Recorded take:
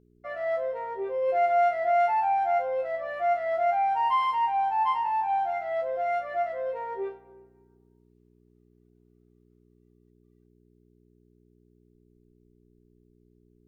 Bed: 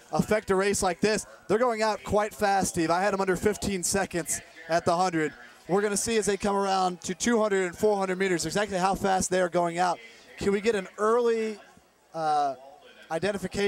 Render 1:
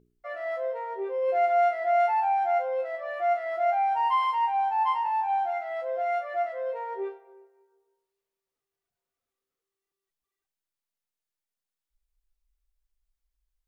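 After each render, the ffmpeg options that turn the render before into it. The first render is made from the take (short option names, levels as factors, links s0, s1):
-af "bandreject=f=60:t=h:w=4,bandreject=f=120:t=h:w=4,bandreject=f=180:t=h:w=4,bandreject=f=240:t=h:w=4,bandreject=f=300:t=h:w=4,bandreject=f=360:t=h:w=4,bandreject=f=420:t=h:w=4,bandreject=f=480:t=h:w=4,bandreject=f=540:t=h:w=4,bandreject=f=600:t=h:w=4,bandreject=f=660:t=h:w=4"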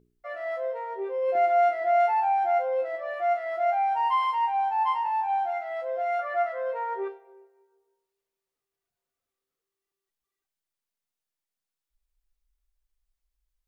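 -filter_complex "[0:a]asettb=1/sr,asplit=3[s0][s1][s2];[s0]atrim=end=1.354[s3];[s1]atrim=start=1.35:end=3.14,asetpts=PTS-STARTPTS,afade=t=in:d=0.004:c=qsin,afade=t=out:st=1.786:d=0.004:c=qsin,equalizer=f=250:w=1.5:g=12.5[s4];[s2]atrim=start=3.136[s5];[s3][s4]acrossfade=d=0.004:c1=hsin:c2=qsin[s6];[s6][s5]acrossfade=d=0.004:c1=qsin:c2=hsin,asettb=1/sr,asplit=3[s7][s8][s9];[s7]atrim=end=6.194[s10];[s8]atrim=start=6.19:end=7.08,asetpts=PTS-STARTPTS,afade=t=in:d=0.004:c=qsin,afade=t=out:st=0.886:d=0.004:c=qsin,equalizer=f=1300:w=1.4:g=8.5[s11];[s9]atrim=start=7.076[s12];[s10][s11]acrossfade=d=0.004:c1=hsin:c2=qsin[s13];[s13][s12]acrossfade=d=0.004:c1=qsin:c2=hsin"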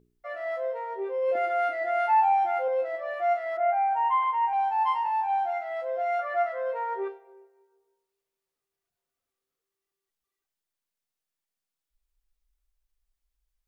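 -filter_complex "[0:a]asettb=1/sr,asplit=3[s0][s1][s2];[s0]atrim=end=1.314[s3];[s1]atrim=start=1.31:end=2.68,asetpts=PTS-STARTPTS,afade=t=in:d=0.004:c=qsin,afade=t=out:st=1.366:d=0.004:c=qsin,aecho=1:1:3.5:0.65,atrim=end_sample=60417[s4];[s2]atrim=start=2.676[s5];[s3][s4]acrossfade=d=0.004:c1=hsin:c2=qsin[s6];[s6][s5]acrossfade=d=0.004:c1=qsin:c2=hsin,asettb=1/sr,asplit=3[s7][s8][s9];[s7]atrim=end=3.574[s10];[s8]atrim=start=3.57:end=4.53,asetpts=PTS-STARTPTS,afade=t=in:d=0.004:c=qsin,afade=t=out:st=0.956:d=0.004:c=qsin,lowpass=f=2400:w=0.5412,lowpass=f=2400:w=1.3066[s11];[s9]atrim=start=4.526[s12];[s10][s11]acrossfade=d=0.004:c1=hsin:c2=qsin[s13];[s13][s12]acrossfade=d=0.004:c1=qsin:c2=hsin"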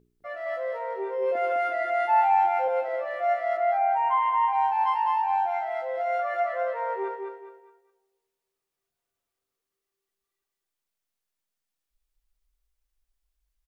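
-af "aecho=1:1:206|412|618|824:0.596|0.208|0.073|0.0255"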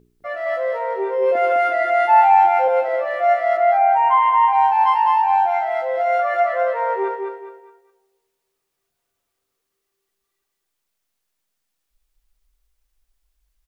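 -af "volume=2.66"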